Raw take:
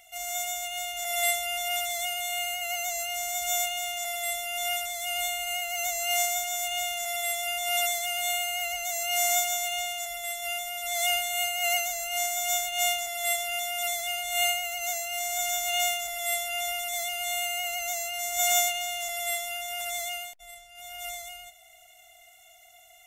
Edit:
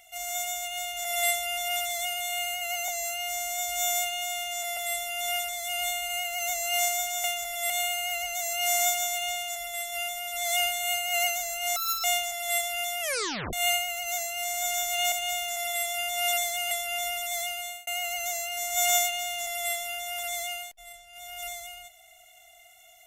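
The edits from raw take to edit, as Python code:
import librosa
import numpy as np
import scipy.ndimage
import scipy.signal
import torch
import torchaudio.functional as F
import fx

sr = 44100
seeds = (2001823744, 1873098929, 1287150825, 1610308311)

y = fx.edit(x, sr, fx.stretch_span(start_s=2.88, length_s=1.26, factor=1.5),
    fx.swap(start_s=6.61, length_s=1.59, other_s=15.87, other_length_s=0.46),
    fx.speed_span(start_s=12.26, length_s=0.53, speed=1.89),
    fx.tape_stop(start_s=13.76, length_s=0.52),
    fx.fade_out_span(start_s=17.1, length_s=0.39), tone=tone)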